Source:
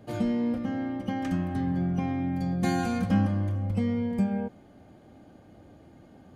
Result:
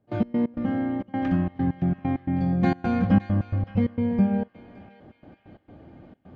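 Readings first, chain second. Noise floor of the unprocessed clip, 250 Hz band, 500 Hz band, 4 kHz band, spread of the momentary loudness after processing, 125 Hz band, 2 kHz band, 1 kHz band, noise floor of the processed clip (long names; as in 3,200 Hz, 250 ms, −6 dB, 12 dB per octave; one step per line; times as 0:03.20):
−54 dBFS, +3.5 dB, +3.0 dB, can't be measured, 6 LU, +3.0 dB, +1.5 dB, +2.5 dB, −66 dBFS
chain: gate pattern ".x.x.xxxx.xxx.x" 132 BPM −24 dB
high-frequency loss of the air 310 metres
feedback echo with a band-pass in the loop 567 ms, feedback 54%, band-pass 2,900 Hz, level −12 dB
level +5.5 dB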